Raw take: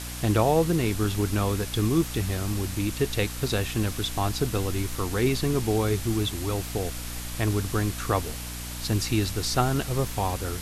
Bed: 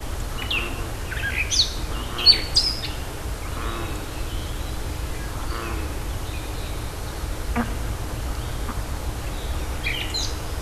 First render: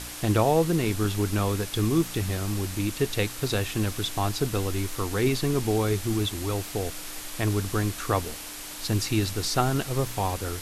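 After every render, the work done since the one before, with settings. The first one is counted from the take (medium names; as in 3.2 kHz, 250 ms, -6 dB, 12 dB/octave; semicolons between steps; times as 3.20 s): de-hum 60 Hz, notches 4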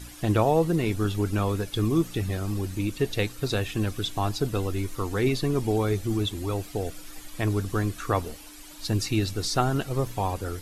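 noise reduction 12 dB, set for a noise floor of -39 dBFS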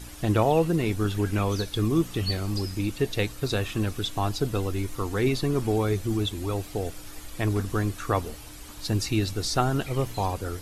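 add bed -19 dB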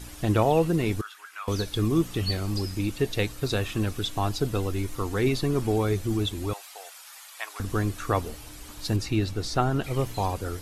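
1.01–1.48 s: ladder high-pass 1.1 kHz, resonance 50%; 6.53–7.60 s: high-pass 830 Hz 24 dB/octave; 8.96–9.84 s: treble shelf 4.3 kHz -8.5 dB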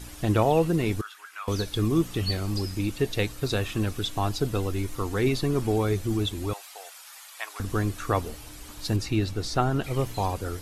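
no audible change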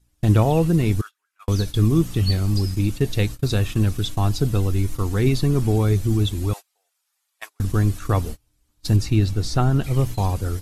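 gate -34 dBFS, range -31 dB; tone controls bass +10 dB, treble +4 dB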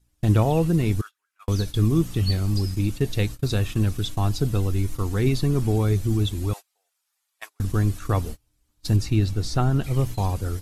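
trim -2.5 dB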